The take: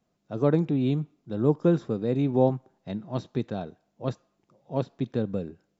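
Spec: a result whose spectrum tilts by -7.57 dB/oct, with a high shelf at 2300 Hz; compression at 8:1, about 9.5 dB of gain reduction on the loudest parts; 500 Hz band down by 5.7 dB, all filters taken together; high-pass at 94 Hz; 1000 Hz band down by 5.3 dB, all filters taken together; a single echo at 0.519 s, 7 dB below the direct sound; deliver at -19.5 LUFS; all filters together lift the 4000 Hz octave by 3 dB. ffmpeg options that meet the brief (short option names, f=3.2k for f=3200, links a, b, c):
-af "highpass=94,equalizer=f=500:t=o:g=-6,equalizer=f=1k:t=o:g=-4,highshelf=f=2.3k:g=-5.5,equalizer=f=4k:t=o:g=8,acompressor=threshold=-29dB:ratio=8,aecho=1:1:519:0.447,volume=16.5dB"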